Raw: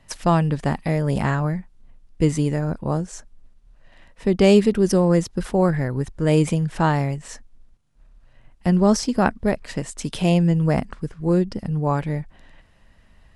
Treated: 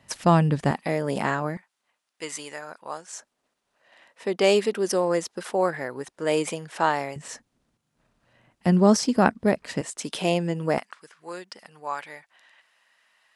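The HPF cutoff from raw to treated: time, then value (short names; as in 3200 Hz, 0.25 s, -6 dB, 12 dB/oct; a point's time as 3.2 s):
100 Hz
from 0.71 s 280 Hz
from 1.57 s 1000 Hz
from 3.13 s 470 Hz
from 7.16 s 150 Hz
from 9.81 s 320 Hz
from 10.78 s 1100 Hz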